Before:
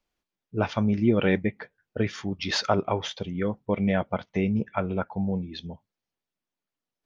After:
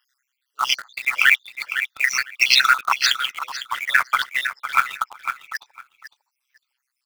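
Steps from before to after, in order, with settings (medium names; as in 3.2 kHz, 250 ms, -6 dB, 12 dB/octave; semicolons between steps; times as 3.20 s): random holes in the spectrogram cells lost 67%; steep high-pass 1.3 kHz 36 dB/octave; in parallel at -3 dB: companded quantiser 4-bit; on the sum: AM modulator 130 Hz, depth 60%; on a send: feedback delay 504 ms, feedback 16%, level -12 dB; on the sum: loudness maximiser +23.5 dB; trim -1 dB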